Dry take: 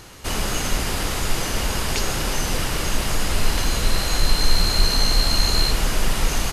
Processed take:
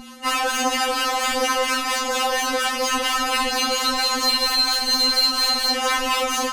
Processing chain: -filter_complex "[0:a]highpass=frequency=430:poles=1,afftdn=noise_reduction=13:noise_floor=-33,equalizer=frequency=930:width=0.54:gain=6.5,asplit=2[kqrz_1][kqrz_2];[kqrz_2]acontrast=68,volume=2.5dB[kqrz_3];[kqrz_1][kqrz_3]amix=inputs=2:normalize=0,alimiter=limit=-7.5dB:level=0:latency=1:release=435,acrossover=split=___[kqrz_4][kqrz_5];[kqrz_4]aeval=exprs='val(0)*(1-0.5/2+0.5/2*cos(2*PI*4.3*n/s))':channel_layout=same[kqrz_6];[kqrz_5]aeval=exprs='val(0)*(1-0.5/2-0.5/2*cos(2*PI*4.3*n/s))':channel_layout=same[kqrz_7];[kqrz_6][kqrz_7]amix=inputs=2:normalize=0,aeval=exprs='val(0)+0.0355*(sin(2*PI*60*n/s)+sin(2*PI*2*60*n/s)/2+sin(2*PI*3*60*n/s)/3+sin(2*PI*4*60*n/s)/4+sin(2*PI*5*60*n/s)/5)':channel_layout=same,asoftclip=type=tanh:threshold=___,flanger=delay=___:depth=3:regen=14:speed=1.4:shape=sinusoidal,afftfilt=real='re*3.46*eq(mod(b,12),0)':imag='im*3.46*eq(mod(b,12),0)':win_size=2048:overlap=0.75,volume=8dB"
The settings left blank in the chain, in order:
790, -20.5dB, 7.9